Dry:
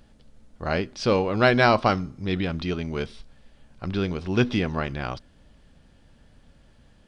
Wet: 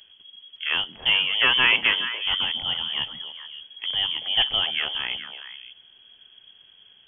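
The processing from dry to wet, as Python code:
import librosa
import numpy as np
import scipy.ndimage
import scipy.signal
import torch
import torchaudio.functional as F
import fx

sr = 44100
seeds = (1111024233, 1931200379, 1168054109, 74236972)

y = np.minimum(x, 2.0 * 10.0 ** (-13.0 / 20.0) - x)
y = fx.freq_invert(y, sr, carrier_hz=3300)
y = fx.echo_stepped(y, sr, ms=141, hz=210.0, octaves=1.4, feedback_pct=70, wet_db=-2.0)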